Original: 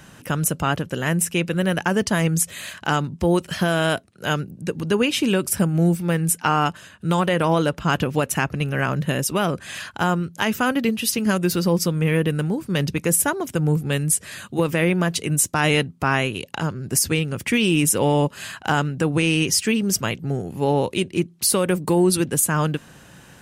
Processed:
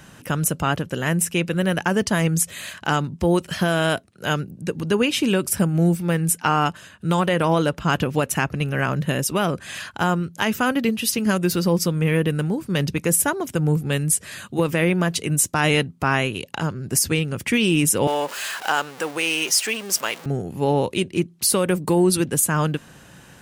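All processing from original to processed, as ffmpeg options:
-filter_complex "[0:a]asettb=1/sr,asplit=3[a][b][c];[a]atrim=end=18.074[d];[b]atrim=start=18.07:end=20.26,asetpts=PTS-STARTPTS,afade=t=in:d=0.004:c=qsin,afade=t=out:st=2.186:d=0.004:c=qsin,aeval=exprs='val(0)+0.5*0.0398*sgn(val(0))':c=same,highpass=550[e];[c]atrim=start=20.256[f];[d][e]acrossfade=d=0.004:c1=hsin:c2=qsin[g];[g][f]acrossfade=d=0.004:c1=qsin:c2=hsin"

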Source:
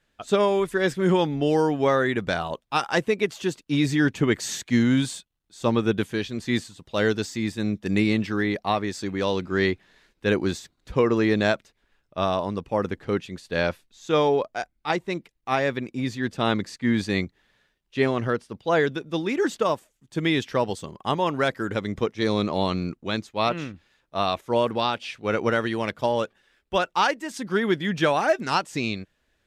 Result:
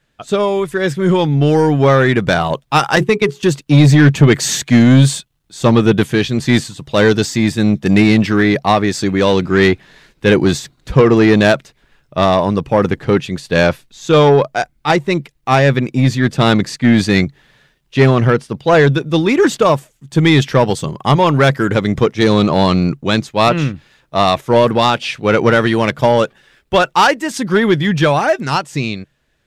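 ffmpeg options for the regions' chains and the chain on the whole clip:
-filter_complex "[0:a]asettb=1/sr,asplit=3[a][b][c];[a]atrim=end=2.964[d];[b]atrim=start=2.96:end=3.43,asetpts=PTS-STARTPTS,afade=t=in:d=0.004:c=qsin,afade=t=out:st=0.466:d=0.004:c=qsin,bandreject=f=60:t=h:w=6,bandreject=f=120:t=h:w=6,bandreject=f=180:t=h:w=6,bandreject=f=240:t=h:w=6,bandreject=f=300:t=h:w=6,bandreject=f=360:t=h:w=6,bandreject=f=420:t=h:w=6,agate=range=-15dB:threshold=-30dB:ratio=16:release=100:detection=peak,equalizer=f=600:w=4.7:g=-15[e];[c]atrim=start=3.426[f];[d][e]acrossfade=d=0.004:c1=hsin:c2=qsin[g];[g][f]acrossfade=d=0.004:c1=qsin:c2=hsin,dynaudnorm=f=110:g=31:m=11.5dB,equalizer=f=140:t=o:w=0.32:g=11,acontrast=76,volume=-1dB"

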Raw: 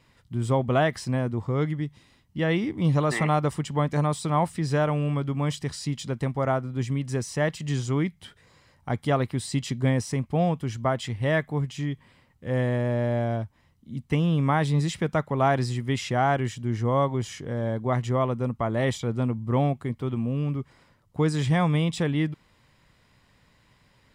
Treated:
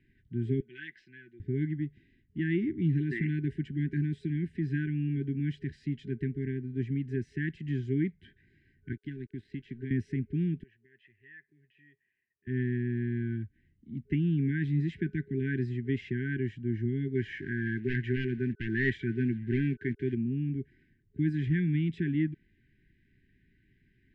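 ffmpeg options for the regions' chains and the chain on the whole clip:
-filter_complex "[0:a]asettb=1/sr,asplit=3[a][b][c];[a]atrim=end=0.604[d];[b]atrim=start=0.6:end=1.4,asetpts=PTS-STARTPTS,afade=t=in:d=0.004:c=qsin,afade=t=out:st=0.796:d=0.004:c=qsin,bandpass=f=4.3k:t=q:w=0.81,aecho=1:1:5.9:0.48,atrim=end_sample=35280,adynamicsmooth=sensitivity=6:basefreq=4.3k[e];[c]atrim=start=1.396[f];[d][e]acrossfade=d=0.004:c1=hsin:c2=qsin[g];[g][f]acrossfade=d=0.004:c1=qsin:c2=hsin,asettb=1/sr,asplit=3[h][i][j];[h]atrim=end=8.924[k];[i]atrim=start=8.92:end=9.91,asetpts=PTS-STARTPTS,afade=t=in:d=0.004:c=qsin,afade=t=out:st=0.986:d=0.004:c=qsin,acrossover=split=430|4700[l][m][n];[l]acompressor=threshold=-33dB:ratio=4[o];[m]acompressor=threshold=-40dB:ratio=4[p];[n]acompressor=threshold=-53dB:ratio=4[q];[o][p][q]amix=inputs=3:normalize=0,aeval=exprs='sgn(val(0))*max(abs(val(0))-0.00376,0)':c=same[r];[j]atrim=start=9.906[s];[k][r]acrossfade=d=0.004:c1=hsin:c2=qsin[t];[t][s]acrossfade=d=0.004:c1=qsin:c2=hsin,asettb=1/sr,asplit=3[u][v][w];[u]atrim=end=10.634[x];[v]atrim=start=10.63:end=12.47,asetpts=PTS-STARTPTS,afade=t=in:d=0.004:c=qsin,afade=t=out:st=1.836:d=0.004:c=qsin,equalizer=f=280:t=o:w=1.4:g=-11,acompressor=threshold=-32dB:ratio=2:attack=3.2:release=140:knee=1:detection=peak,asplit=3[y][z][aa];[y]bandpass=f=530:t=q:w=8,volume=0dB[ab];[z]bandpass=f=1.84k:t=q:w=8,volume=-6dB[ac];[aa]bandpass=f=2.48k:t=q:w=8,volume=-9dB[ad];[ab][ac][ad]amix=inputs=3:normalize=0[ae];[w]atrim=start=12.466[af];[x][ae]acrossfade=d=0.004:c1=hsin:c2=qsin[ag];[ag][af]acrossfade=d=0.004:c1=qsin:c2=hsin,asettb=1/sr,asplit=3[ah][ai][aj];[ah]atrim=end=17.154[ak];[ai]atrim=start=17.15:end=20.15,asetpts=PTS-STARTPTS,afade=t=in:d=0.004:c=qsin,afade=t=out:st=2.996:d=0.004:c=qsin,equalizer=f=1.5k:w=0.71:g=15,acrusher=bits=6:mix=0:aa=0.5,asoftclip=type=hard:threshold=-16dB[al];[aj]atrim=start=20.146[am];[ak][al]acrossfade=d=0.004:c1=hsin:c2=qsin[an];[an][am]acrossfade=d=0.004:c1=qsin:c2=hsin,aemphasis=mode=reproduction:type=bsi,afftfilt=real='re*(1-between(b*sr/4096,410,1500))':imag='im*(1-between(b*sr/4096,410,1500))':win_size=4096:overlap=0.75,acrossover=split=230 2600:gain=0.224 1 0.0708[ao][ap][aq];[ao][ap][aq]amix=inputs=3:normalize=0,volume=-3.5dB"

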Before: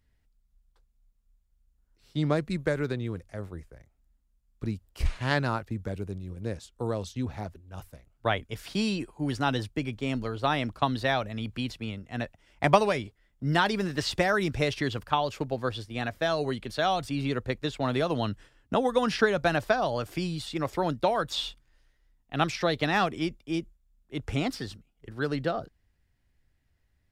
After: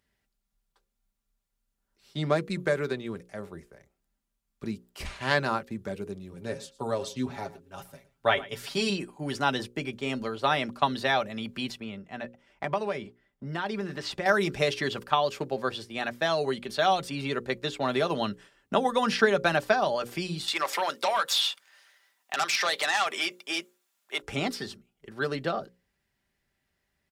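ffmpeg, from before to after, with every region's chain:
-filter_complex "[0:a]asettb=1/sr,asplit=3[a][b][c];[a]atrim=end=6.334[d];[b]atrim=start=6.33:end=8.9,asetpts=PTS-STARTPTS,afade=t=in:d=0.004:c=qsin,afade=t=out:st=2.566:d=0.004:c=qsin,aecho=1:1:7.3:0.68,atrim=end_sample=113337,aecho=1:1:113:0.119,atrim=end_sample=113337[e];[c]atrim=start=8.896[f];[d][e]acrossfade=d=0.004:c1=hsin:c2=qsin[g];[g][f]acrossfade=d=0.004:c1=qsin:c2=hsin,asettb=1/sr,asplit=3[h][i][j];[h]atrim=end=11.804[k];[i]atrim=start=11.8:end=14.26,asetpts=PTS-STARTPTS,afade=t=in:d=0.004:c=qsin,afade=t=out:st=2.456:d=0.004:c=qsin,highshelf=f=3.6k:g=-10.5,acompressor=threshold=-31dB:ratio=2.5:attack=3.2:release=140:knee=1:detection=peak[l];[j]atrim=start=14.256[m];[k][l]acrossfade=d=0.004:c1=hsin:c2=qsin[n];[n][m]acrossfade=d=0.004:c1=qsin:c2=hsin,asettb=1/sr,asplit=3[o][p][q];[o]atrim=end=20.484[r];[p]atrim=start=20.48:end=24.22,asetpts=PTS-STARTPTS,afade=t=in:d=0.004:c=qsin,afade=t=out:st=3.736:d=0.004:c=qsin,highpass=850,acompressor=threshold=-40dB:ratio=2:attack=3.2:release=140:knee=1:detection=peak,aeval=exprs='0.0794*sin(PI/2*2.82*val(0)/0.0794)':c=same[s];[q]atrim=start=24.216[t];[r][s]acrossfade=d=0.004:c1=hsin:c2=qsin[u];[u][t]acrossfade=d=0.004:c1=qsin:c2=hsin,highpass=f=250:p=1,bandreject=f=60:t=h:w=6,bandreject=f=120:t=h:w=6,bandreject=f=180:t=h:w=6,bandreject=f=240:t=h:w=6,bandreject=f=300:t=h:w=6,bandreject=f=360:t=h:w=6,bandreject=f=420:t=h:w=6,bandreject=f=480:t=h:w=6,bandreject=f=540:t=h:w=6,aecho=1:1:5.1:0.4,volume=2dB"

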